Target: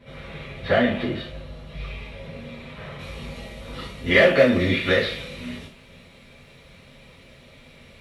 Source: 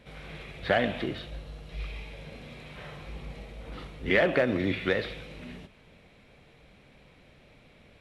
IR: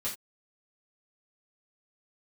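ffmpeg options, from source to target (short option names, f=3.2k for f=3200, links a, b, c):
-filter_complex "[0:a]asetnsamples=n=441:p=0,asendcmd='2.99 highshelf g 8',highshelf=f=3.5k:g=-5.5[a];[1:a]atrim=start_sample=2205[b];[a][b]afir=irnorm=-1:irlink=0,volume=3.5dB"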